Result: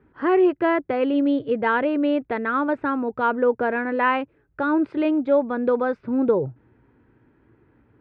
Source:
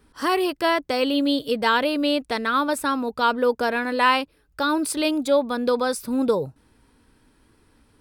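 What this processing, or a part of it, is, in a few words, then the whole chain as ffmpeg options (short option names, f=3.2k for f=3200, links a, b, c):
bass cabinet: -af "highpass=63,equalizer=f=120:t=q:w=4:g=9,equalizer=f=360:t=q:w=4:g=7,equalizer=f=1.1k:t=q:w=4:g=-4,lowpass=f=2.1k:w=0.5412,lowpass=f=2.1k:w=1.3066"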